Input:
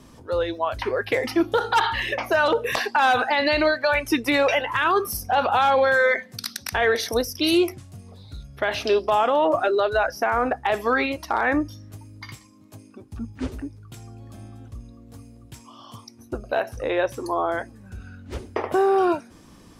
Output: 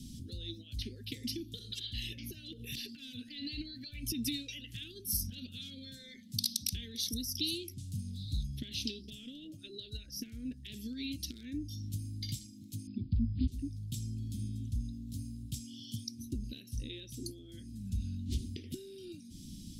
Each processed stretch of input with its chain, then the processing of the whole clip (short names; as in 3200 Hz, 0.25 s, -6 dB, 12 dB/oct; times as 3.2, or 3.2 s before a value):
2.07–4.23 bell 7100 Hz -7 dB 1.4 oct + notch 3800 Hz, Q 24 + compressor, threshold -24 dBFS
12.87–13.48 brick-wall FIR low-pass 5100 Hz + low shelf 180 Hz +11.5 dB
whole clip: compressor 6:1, threshold -31 dBFS; Chebyshev band-stop 240–3500 Hz, order 3; gain +4 dB